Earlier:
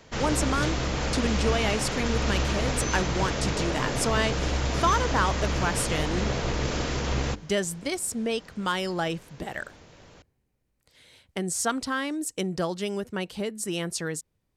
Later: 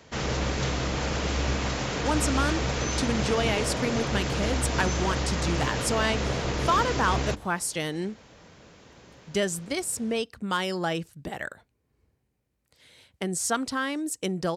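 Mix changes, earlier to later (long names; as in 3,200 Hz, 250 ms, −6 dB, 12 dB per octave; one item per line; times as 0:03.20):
speech: entry +1.85 s
master: add high-pass filter 49 Hz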